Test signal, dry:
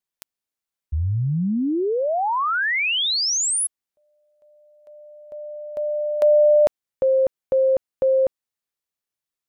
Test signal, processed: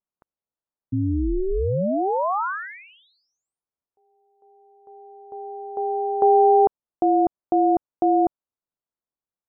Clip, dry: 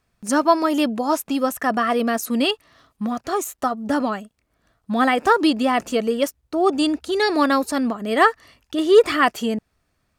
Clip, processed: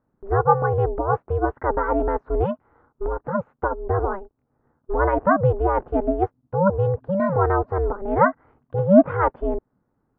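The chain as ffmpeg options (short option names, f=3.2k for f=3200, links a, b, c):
-af "lowpass=f=1.2k:w=0.5412,lowpass=f=1.2k:w=1.3066,aeval=exprs='val(0)*sin(2*PI*190*n/s)':c=same,volume=2.5dB"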